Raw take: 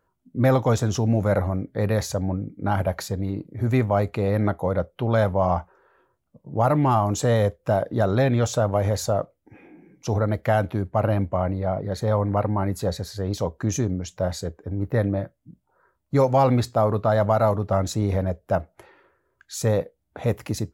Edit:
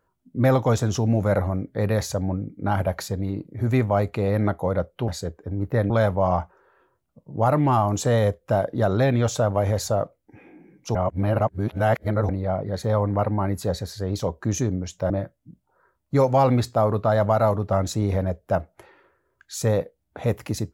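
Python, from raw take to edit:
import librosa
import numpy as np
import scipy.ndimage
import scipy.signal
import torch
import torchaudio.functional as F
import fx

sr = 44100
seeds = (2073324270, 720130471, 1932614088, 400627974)

y = fx.edit(x, sr, fx.reverse_span(start_s=10.13, length_s=1.34),
    fx.move(start_s=14.28, length_s=0.82, to_s=5.08), tone=tone)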